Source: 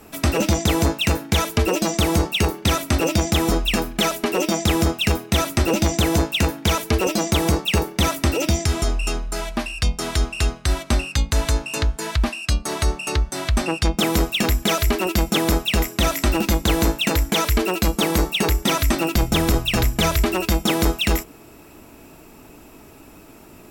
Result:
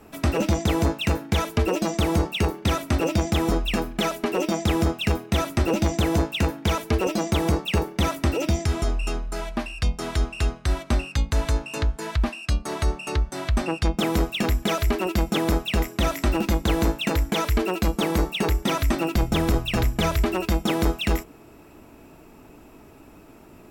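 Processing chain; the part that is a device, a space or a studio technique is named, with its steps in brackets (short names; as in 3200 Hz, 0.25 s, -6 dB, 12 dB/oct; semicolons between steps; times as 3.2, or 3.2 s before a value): behind a face mask (high shelf 3100 Hz -8 dB); gain -2.5 dB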